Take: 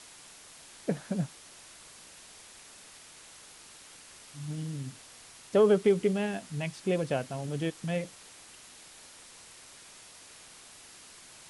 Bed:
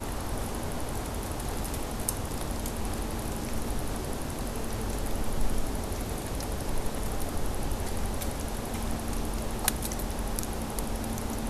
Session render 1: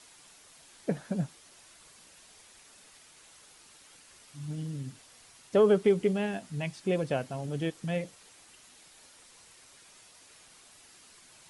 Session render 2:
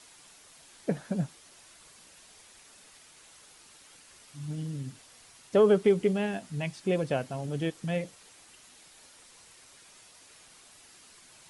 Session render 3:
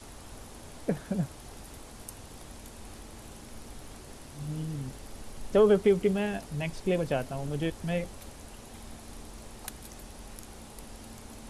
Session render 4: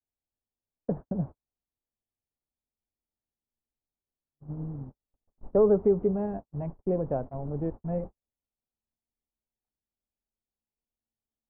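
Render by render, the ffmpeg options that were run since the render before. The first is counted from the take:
ffmpeg -i in.wav -af "afftdn=noise_reduction=6:noise_floor=-52" out.wav
ffmpeg -i in.wav -af "volume=1dB" out.wav
ffmpeg -i in.wav -i bed.wav -filter_complex "[1:a]volume=-14dB[link_01];[0:a][link_01]amix=inputs=2:normalize=0" out.wav
ffmpeg -i in.wav -af "lowpass=frequency=1000:width=0.5412,lowpass=frequency=1000:width=1.3066,agate=range=-52dB:threshold=-35dB:ratio=16:detection=peak" out.wav

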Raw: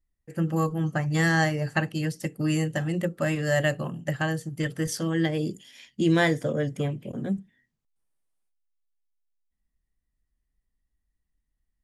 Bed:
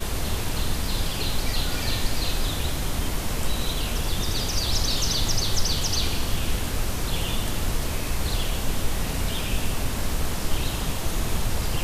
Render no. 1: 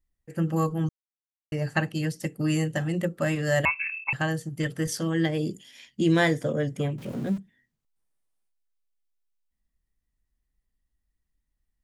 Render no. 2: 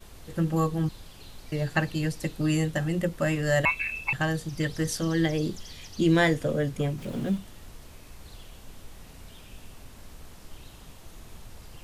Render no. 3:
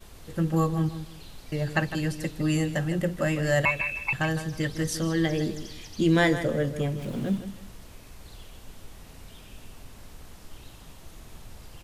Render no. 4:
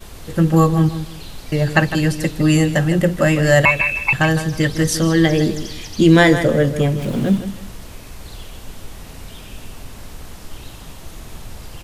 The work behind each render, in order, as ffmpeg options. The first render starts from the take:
ffmpeg -i in.wav -filter_complex "[0:a]asettb=1/sr,asplit=3[link_01][link_02][link_03];[link_01]atrim=end=3.654[link_04];[link_02]atrim=start=3.65:end=4.13,asetpts=PTS-STARTPTS,afade=type=in:duration=0.004:curve=qsin,afade=type=out:start_time=0.476:duration=0.004:curve=qsin,lowpass=frequency=2400:width_type=q:width=0.5098,lowpass=frequency=2400:width_type=q:width=0.6013,lowpass=frequency=2400:width_type=q:width=0.9,lowpass=frequency=2400:width_type=q:width=2.563,afreqshift=-2800[link_05];[link_03]atrim=start=4.126[link_06];[link_04][link_05]acrossfade=duration=0.004:curve1=hsin:curve2=qsin[link_07];[link_07][link_06]acrossfade=duration=0.004:curve1=qsin:curve2=hsin,asettb=1/sr,asplit=3[link_08][link_09][link_10];[link_08]atrim=end=6.984[link_11];[link_09]atrim=start=6.98:end=7.38,asetpts=PTS-STARTPTS,afade=type=in:duration=0.004:curve=qsin,afade=type=out:start_time=0.396:duration=0.004:curve=qsin,aeval=exprs='val(0)+0.5*0.0106*sgn(val(0))':channel_layout=same[link_12];[link_10]atrim=start=7.376[link_13];[link_11][link_12]acrossfade=duration=0.004:curve1=hsin:curve2=qsin[link_14];[link_14][link_13]acrossfade=duration=0.004:curve1=qsin:curve2=hsin,asplit=3[link_15][link_16][link_17];[link_15]atrim=end=0.89,asetpts=PTS-STARTPTS,afade=type=out:start_time=0.886:duration=0.004:curve=hsin[link_18];[link_16]atrim=start=0.89:end=1.52,asetpts=PTS-STARTPTS,volume=0[link_19];[link_17]atrim=start=1.52,asetpts=PTS-STARTPTS,afade=type=in:duration=0.004:curve=hsin[link_20];[link_18][link_19][link_20]concat=n=3:v=0:a=1" out.wav
ffmpeg -i in.wav -i bed.wav -filter_complex "[1:a]volume=-20.5dB[link_01];[0:a][link_01]amix=inputs=2:normalize=0" out.wav
ffmpeg -i in.wav -filter_complex "[0:a]asplit=2[link_01][link_02];[link_02]adelay=157,lowpass=frequency=4300:poles=1,volume=-11dB,asplit=2[link_03][link_04];[link_04]adelay=157,lowpass=frequency=4300:poles=1,volume=0.28,asplit=2[link_05][link_06];[link_06]adelay=157,lowpass=frequency=4300:poles=1,volume=0.28[link_07];[link_01][link_03][link_05][link_07]amix=inputs=4:normalize=0" out.wav
ffmpeg -i in.wav -af "volume=11dB,alimiter=limit=-1dB:level=0:latency=1" out.wav

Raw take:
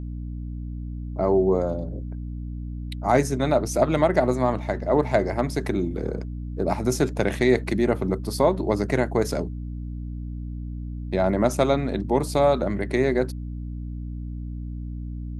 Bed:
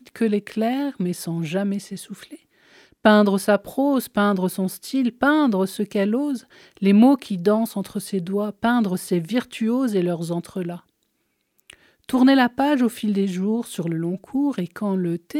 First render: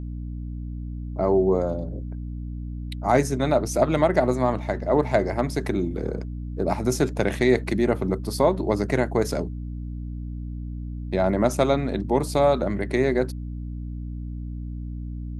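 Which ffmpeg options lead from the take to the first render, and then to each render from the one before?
ffmpeg -i in.wav -af anull out.wav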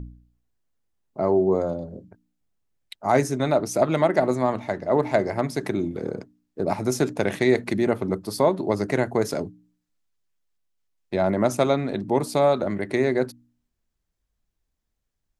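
ffmpeg -i in.wav -af "bandreject=frequency=60:width_type=h:width=4,bandreject=frequency=120:width_type=h:width=4,bandreject=frequency=180:width_type=h:width=4,bandreject=frequency=240:width_type=h:width=4,bandreject=frequency=300:width_type=h:width=4" out.wav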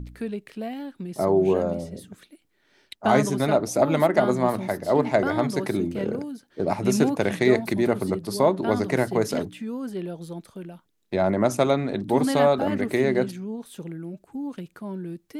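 ffmpeg -i in.wav -i bed.wav -filter_complex "[1:a]volume=-10.5dB[link_01];[0:a][link_01]amix=inputs=2:normalize=0" out.wav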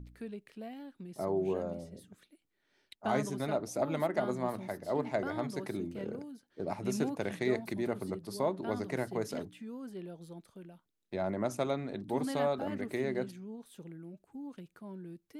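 ffmpeg -i in.wav -af "volume=-12dB" out.wav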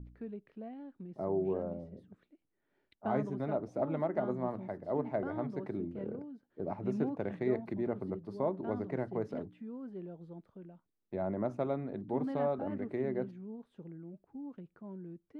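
ffmpeg -i in.wav -af "lowpass=frequency=1100:poles=1,aemphasis=mode=reproduction:type=75kf" out.wav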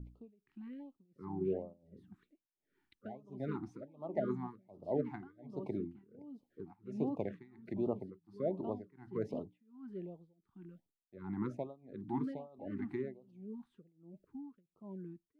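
ffmpeg -i in.wav -af "tremolo=f=1.4:d=0.96,afftfilt=real='re*(1-between(b*sr/1024,490*pow(1900/490,0.5+0.5*sin(2*PI*1.3*pts/sr))/1.41,490*pow(1900/490,0.5+0.5*sin(2*PI*1.3*pts/sr))*1.41))':imag='im*(1-between(b*sr/1024,490*pow(1900/490,0.5+0.5*sin(2*PI*1.3*pts/sr))/1.41,490*pow(1900/490,0.5+0.5*sin(2*PI*1.3*pts/sr))*1.41))':win_size=1024:overlap=0.75" out.wav

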